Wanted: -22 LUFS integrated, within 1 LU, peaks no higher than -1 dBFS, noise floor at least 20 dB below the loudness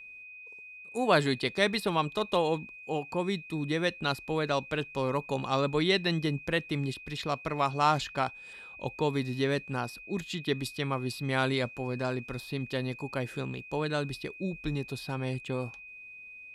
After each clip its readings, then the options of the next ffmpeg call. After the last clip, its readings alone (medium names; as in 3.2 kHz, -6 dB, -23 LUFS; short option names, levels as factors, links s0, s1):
steady tone 2.5 kHz; tone level -45 dBFS; loudness -31.0 LUFS; peak level -11.0 dBFS; loudness target -22.0 LUFS
-> -af "bandreject=f=2500:w=30"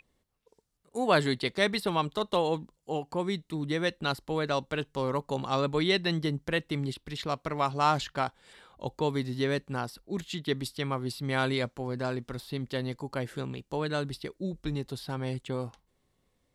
steady tone not found; loudness -31.5 LUFS; peak level -11.0 dBFS; loudness target -22.0 LUFS
-> -af "volume=2.99"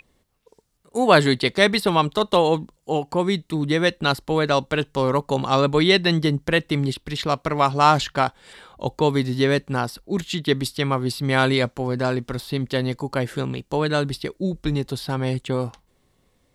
loudness -22.0 LUFS; peak level -1.5 dBFS; noise floor -66 dBFS